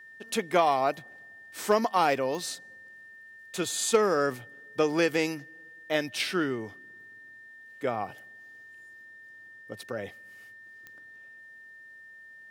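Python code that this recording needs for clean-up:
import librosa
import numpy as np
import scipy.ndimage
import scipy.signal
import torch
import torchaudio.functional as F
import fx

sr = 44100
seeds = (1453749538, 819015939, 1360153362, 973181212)

y = fx.fix_declip(x, sr, threshold_db=-11.5)
y = fx.fix_declick_ar(y, sr, threshold=10.0)
y = fx.notch(y, sr, hz=1800.0, q=30.0)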